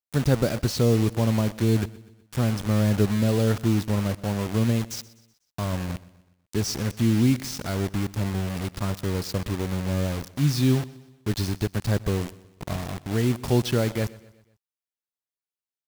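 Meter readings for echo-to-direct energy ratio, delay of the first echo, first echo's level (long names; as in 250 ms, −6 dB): −19.0 dB, 124 ms, −20.0 dB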